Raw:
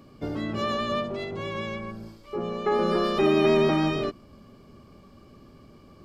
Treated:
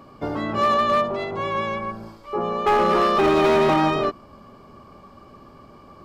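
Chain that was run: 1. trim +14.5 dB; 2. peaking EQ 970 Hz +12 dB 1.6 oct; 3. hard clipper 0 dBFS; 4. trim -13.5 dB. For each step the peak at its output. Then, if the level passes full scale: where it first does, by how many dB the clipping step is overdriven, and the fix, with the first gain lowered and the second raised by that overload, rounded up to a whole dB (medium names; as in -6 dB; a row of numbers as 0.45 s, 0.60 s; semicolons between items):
+3.5 dBFS, +9.5 dBFS, 0.0 dBFS, -13.5 dBFS; step 1, 9.5 dB; step 1 +4.5 dB, step 4 -3.5 dB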